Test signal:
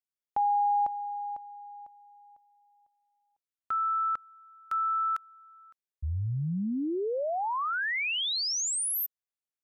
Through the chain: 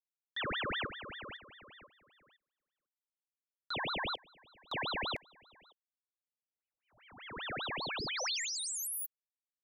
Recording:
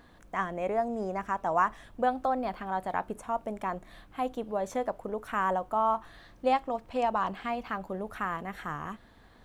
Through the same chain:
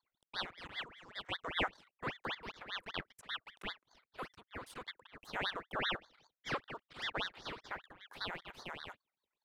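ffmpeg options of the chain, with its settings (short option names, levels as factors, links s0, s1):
-af "highpass=f=810:w=0.5412,highpass=f=810:w=1.3066,anlmdn=0.00158,equalizer=f=3700:t=o:w=0.47:g=4,aeval=exprs='val(0)*sin(2*PI*1500*n/s+1500*0.85/5.1*sin(2*PI*5.1*n/s))':c=same,volume=0.531"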